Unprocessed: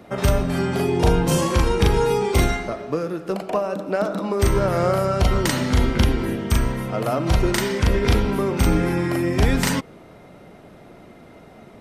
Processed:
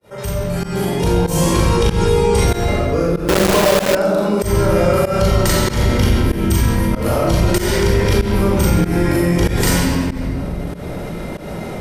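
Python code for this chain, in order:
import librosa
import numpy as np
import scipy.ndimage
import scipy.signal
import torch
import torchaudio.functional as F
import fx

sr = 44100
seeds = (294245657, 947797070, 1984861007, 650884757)

p1 = fx.fade_in_head(x, sr, length_s=1.57)
p2 = fx.high_shelf(p1, sr, hz=5000.0, db=11.0)
p3 = p2 + fx.echo_feedback(p2, sr, ms=165, feedback_pct=42, wet_db=-21, dry=0)
p4 = fx.dmg_buzz(p3, sr, base_hz=400.0, harmonics=9, level_db=-31.0, tilt_db=-4, odd_only=False, at=(4.67, 5.18), fade=0.02)
p5 = 10.0 ** (-19.0 / 20.0) * np.tanh(p4 / 10.0 ** (-19.0 / 20.0))
p6 = p4 + (p5 * 10.0 ** (-10.0 / 20.0))
p7 = fx.peak_eq(p6, sr, hz=560.0, db=2.5, octaves=0.77)
p8 = fx.room_shoebox(p7, sr, seeds[0], volume_m3=1900.0, walls='mixed', distance_m=4.6)
p9 = fx.quant_companded(p8, sr, bits=2, at=(3.28, 3.95))
p10 = fx.volume_shaper(p9, sr, bpm=95, per_beat=1, depth_db=-23, release_ms=196.0, shape='fast start')
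p11 = fx.lowpass(p10, sr, hz=11000.0, slope=24, at=(1.77, 2.48))
p12 = fx.env_flatten(p11, sr, amount_pct=50)
y = p12 * 10.0 ** (-9.5 / 20.0)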